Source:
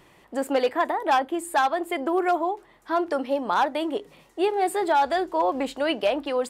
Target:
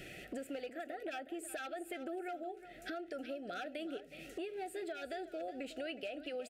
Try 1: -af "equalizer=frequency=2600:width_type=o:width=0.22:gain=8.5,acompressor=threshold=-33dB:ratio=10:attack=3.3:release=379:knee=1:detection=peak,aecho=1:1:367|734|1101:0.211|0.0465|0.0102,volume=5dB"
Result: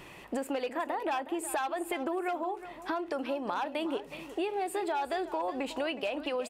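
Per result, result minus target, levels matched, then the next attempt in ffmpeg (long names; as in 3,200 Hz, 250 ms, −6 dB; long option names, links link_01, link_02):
downward compressor: peak gain reduction −10 dB; 1,000 Hz band +4.0 dB
-af "equalizer=frequency=2600:width_type=o:width=0.22:gain=8.5,acompressor=threshold=-44dB:ratio=10:attack=3.3:release=379:knee=1:detection=peak,aecho=1:1:367|734|1101:0.211|0.0465|0.0102,volume=5dB"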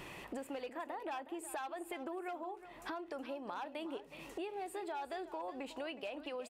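1,000 Hz band +3.5 dB
-af "asuperstop=centerf=1000:order=20:qfactor=1.9,equalizer=frequency=2600:width_type=o:width=0.22:gain=8.5,acompressor=threshold=-44dB:ratio=10:attack=3.3:release=379:knee=1:detection=peak,aecho=1:1:367|734|1101:0.211|0.0465|0.0102,volume=5dB"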